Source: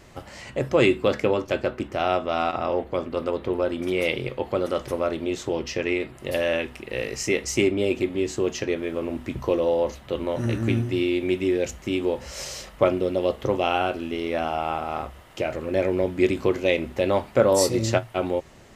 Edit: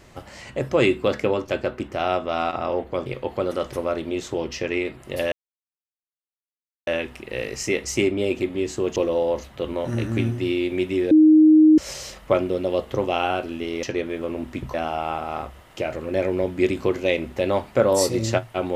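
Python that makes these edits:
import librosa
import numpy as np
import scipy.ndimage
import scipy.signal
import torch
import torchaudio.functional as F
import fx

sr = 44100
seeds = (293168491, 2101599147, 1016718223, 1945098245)

y = fx.edit(x, sr, fx.cut(start_s=3.06, length_s=1.15),
    fx.insert_silence(at_s=6.47, length_s=1.55),
    fx.move(start_s=8.56, length_s=0.91, to_s=14.34),
    fx.bleep(start_s=11.62, length_s=0.67, hz=311.0, db=-9.0), tone=tone)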